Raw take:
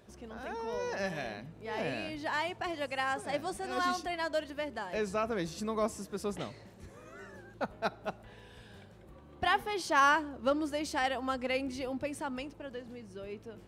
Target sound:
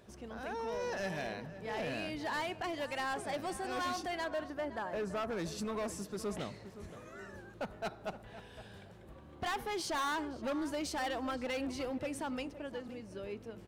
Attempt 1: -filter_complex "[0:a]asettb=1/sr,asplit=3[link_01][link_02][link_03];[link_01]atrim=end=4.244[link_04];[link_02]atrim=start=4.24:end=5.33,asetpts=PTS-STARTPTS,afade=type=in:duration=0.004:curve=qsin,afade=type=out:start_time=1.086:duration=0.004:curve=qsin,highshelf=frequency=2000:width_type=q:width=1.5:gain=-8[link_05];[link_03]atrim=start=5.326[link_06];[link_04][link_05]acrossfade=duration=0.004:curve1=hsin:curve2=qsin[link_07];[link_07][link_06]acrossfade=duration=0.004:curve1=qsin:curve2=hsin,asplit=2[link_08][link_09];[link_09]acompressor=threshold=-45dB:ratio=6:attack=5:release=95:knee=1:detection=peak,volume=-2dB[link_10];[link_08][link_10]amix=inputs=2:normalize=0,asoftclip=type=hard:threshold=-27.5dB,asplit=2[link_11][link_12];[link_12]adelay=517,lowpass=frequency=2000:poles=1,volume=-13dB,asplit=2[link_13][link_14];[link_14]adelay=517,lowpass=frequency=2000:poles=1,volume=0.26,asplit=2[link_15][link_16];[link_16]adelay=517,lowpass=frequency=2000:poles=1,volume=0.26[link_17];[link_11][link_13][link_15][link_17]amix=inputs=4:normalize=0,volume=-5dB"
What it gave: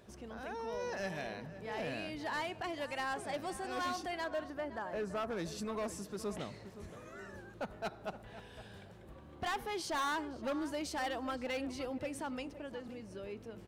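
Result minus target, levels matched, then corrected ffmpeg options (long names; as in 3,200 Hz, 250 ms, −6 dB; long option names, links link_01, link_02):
downward compressor: peak gain reduction +9 dB
-filter_complex "[0:a]asettb=1/sr,asplit=3[link_01][link_02][link_03];[link_01]atrim=end=4.244[link_04];[link_02]atrim=start=4.24:end=5.33,asetpts=PTS-STARTPTS,afade=type=in:duration=0.004:curve=qsin,afade=type=out:start_time=1.086:duration=0.004:curve=qsin,highshelf=frequency=2000:width_type=q:width=1.5:gain=-8[link_05];[link_03]atrim=start=5.326[link_06];[link_04][link_05]acrossfade=duration=0.004:curve1=hsin:curve2=qsin[link_07];[link_07][link_06]acrossfade=duration=0.004:curve1=qsin:curve2=hsin,asplit=2[link_08][link_09];[link_09]acompressor=threshold=-34.5dB:ratio=6:attack=5:release=95:knee=1:detection=peak,volume=-2dB[link_10];[link_08][link_10]amix=inputs=2:normalize=0,asoftclip=type=hard:threshold=-27.5dB,asplit=2[link_11][link_12];[link_12]adelay=517,lowpass=frequency=2000:poles=1,volume=-13dB,asplit=2[link_13][link_14];[link_14]adelay=517,lowpass=frequency=2000:poles=1,volume=0.26,asplit=2[link_15][link_16];[link_16]adelay=517,lowpass=frequency=2000:poles=1,volume=0.26[link_17];[link_11][link_13][link_15][link_17]amix=inputs=4:normalize=0,volume=-5dB"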